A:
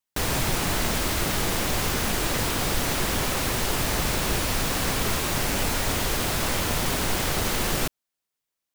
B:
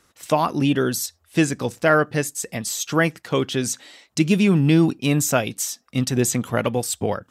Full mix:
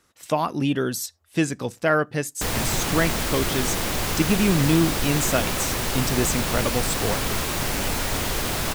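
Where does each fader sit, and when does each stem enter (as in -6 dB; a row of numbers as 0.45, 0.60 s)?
0.0, -3.5 dB; 2.25, 0.00 s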